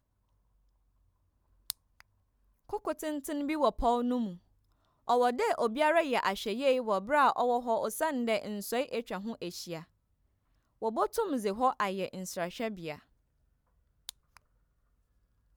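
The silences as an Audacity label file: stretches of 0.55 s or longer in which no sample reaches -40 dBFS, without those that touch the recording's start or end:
2.010000	2.690000	silence
4.350000	5.080000	silence
9.820000	10.820000	silence
12.960000	14.090000	silence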